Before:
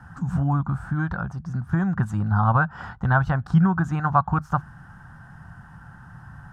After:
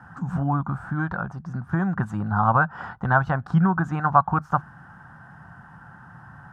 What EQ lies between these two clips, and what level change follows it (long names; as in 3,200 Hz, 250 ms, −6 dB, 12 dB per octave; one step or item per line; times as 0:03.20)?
high-pass filter 300 Hz 6 dB per octave
high-shelf EQ 2,700 Hz −11.5 dB
+4.5 dB